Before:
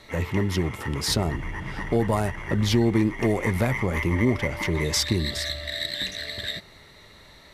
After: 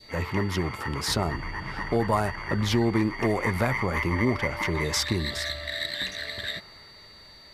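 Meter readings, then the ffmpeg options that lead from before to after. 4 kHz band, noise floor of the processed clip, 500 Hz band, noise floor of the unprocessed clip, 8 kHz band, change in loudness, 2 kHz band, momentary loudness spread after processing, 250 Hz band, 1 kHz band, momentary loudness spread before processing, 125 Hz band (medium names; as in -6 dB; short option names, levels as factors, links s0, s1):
-2.5 dB, -50 dBFS, -1.5 dB, -50 dBFS, -3.0 dB, -2.0 dB, +1.0 dB, 9 LU, -3.0 dB, +2.5 dB, 8 LU, -3.5 dB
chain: -af "aeval=exprs='val(0)+0.00501*sin(2*PI*4600*n/s)':c=same,adynamicequalizer=threshold=0.00708:dfrequency=1200:dqfactor=0.89:tfrequency=1200:tqfactor=0.89:attack=5:release=100:ratio=0.375:range=4:mode=boostabove:tftype=bell,volume=0.668"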